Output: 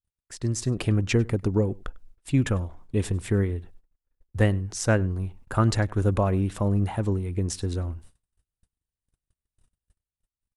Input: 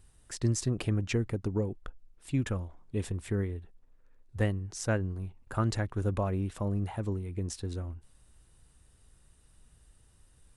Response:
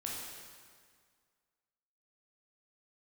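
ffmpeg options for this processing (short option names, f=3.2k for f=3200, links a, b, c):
-filter_complex "[0:a]agate=range=-39dB:threshold=-53dB:ratio=16:detection=peak,dynaudnorm=f=200:g=7:m=9dB,asplit=2[a][b];[b]adelay=99.13,volume=-24dB,highshelf=f=4k:g=-2.23[c];[a][c]amix=inputs=2:normalize=0,volume=-1.5dB"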